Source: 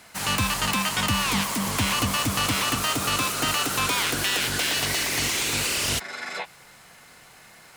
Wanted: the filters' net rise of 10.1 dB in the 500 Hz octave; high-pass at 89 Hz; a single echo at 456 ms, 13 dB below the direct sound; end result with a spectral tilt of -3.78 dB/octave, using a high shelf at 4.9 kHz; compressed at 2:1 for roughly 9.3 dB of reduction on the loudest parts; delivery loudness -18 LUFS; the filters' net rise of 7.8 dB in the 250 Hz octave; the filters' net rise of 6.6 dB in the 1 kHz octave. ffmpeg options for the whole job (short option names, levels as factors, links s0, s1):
-af "highpass=89,equalizer=f=250:t=o:g=7.5,equalizer=f=500:t=o:g=9,equalizer=f=1000:t=o:g=6,highshelf=f=4900:g=-9,acompressor=threshold=0.0224:ratio=2,aecho=1:1:456:0.224,volume=3.76"